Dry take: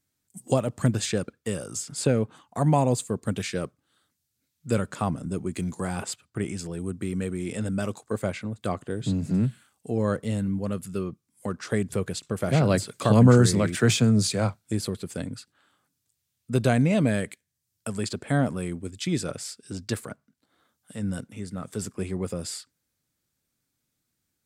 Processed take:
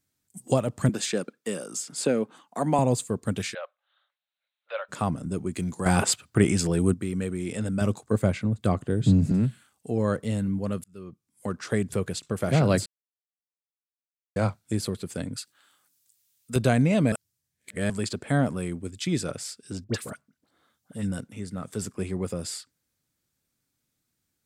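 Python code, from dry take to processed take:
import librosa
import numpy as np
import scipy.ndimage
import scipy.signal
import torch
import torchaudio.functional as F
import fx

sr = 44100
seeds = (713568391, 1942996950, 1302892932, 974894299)

y = fx.highpass(x, sr, hz=190.0, slope=24, at=(0.89, 2.79))
y = fx.cheby1_bandpass(y, sr, low_hz=550.0, high_hz=3900.0, order=5, at=(3.53, 4.88), fade=0.02)
y = fx.low_shelf(y, sr, hz=300.0, db=9.5, at=(7.81, 9.32))
y = fx.tilt_eq(y, sr, slope=3.0, at=(15.36, 16.56))
y = fx.dispersion(y, sr, late='highs', ms=54.0, hz=1400.0, at=(19.84, 21.12))
y = fx.edit(y, sr, fx.clip_gain(start_s=5.86, length_s=1.08, db=9.5),
    fx.fade_in_span(start_s=10.84, length_s=0.66),
    fx.silence(start_s=12.86, length_s=1.5),
    fx.reverse_span(start_s=17.12, length_s=0.78), tone=tone)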